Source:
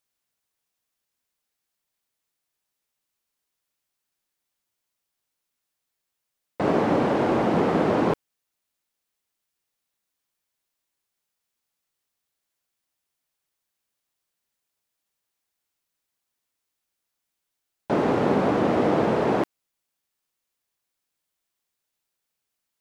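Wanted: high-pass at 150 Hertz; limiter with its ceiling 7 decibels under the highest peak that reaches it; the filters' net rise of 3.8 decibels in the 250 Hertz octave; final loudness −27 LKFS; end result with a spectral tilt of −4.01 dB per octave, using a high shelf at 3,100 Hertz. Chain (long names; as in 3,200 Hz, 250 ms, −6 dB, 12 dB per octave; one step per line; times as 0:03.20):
high-pass filter 150 Hz
parametric band 250 Hz +5.5 dB
high-shelf EQ 3,100 Hz +4.5 dB
level −4 dB
brickwall limiter −17.5 dBFS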